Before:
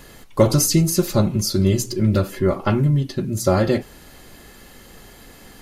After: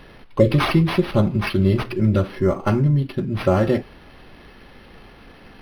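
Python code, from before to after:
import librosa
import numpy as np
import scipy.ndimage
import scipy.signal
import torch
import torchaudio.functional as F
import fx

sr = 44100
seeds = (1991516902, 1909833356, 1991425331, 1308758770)

y = fx.spec_erase(x, sr, start_s=0.4, length_s=0.71, low_hz=590.0, high_hz=1700.0)
y = np.interp(np.arange(len(y)), np.arange(len(y))[::6], y[::6])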